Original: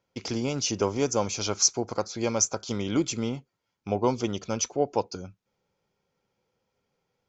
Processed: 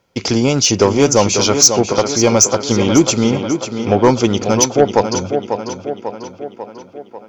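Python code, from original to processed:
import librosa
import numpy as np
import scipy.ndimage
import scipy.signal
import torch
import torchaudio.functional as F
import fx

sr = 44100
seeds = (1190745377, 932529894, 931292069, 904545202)

y = fx.echo_tape(x, sr, ms=544, feedback_pct=62, wet_db=-7, lp_hz=4300.0, drive_db=11.0, wow_cents=7)
y = fx.fold_sine(y, sr, drive_db=5, ceiling_db=-7.5)
y = y * librosa.db_to_amplitude(6.0)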